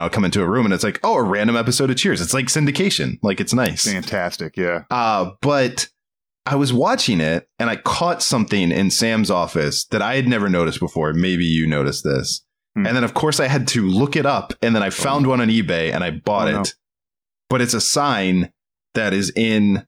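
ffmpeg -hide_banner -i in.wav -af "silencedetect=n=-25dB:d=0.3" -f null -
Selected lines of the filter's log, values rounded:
silence_start: 5.84
silence_end: 6.47 | silence_duration: 0.62
silence_start: 12.37
silence_end: 12.76 | silence_duration: 0.39
silence_start: 16.71
silence_end: 17.51 | silence_duration: 0.80
silence_start: 18.45
silence_end: 18.95 | silence_duration: 0.50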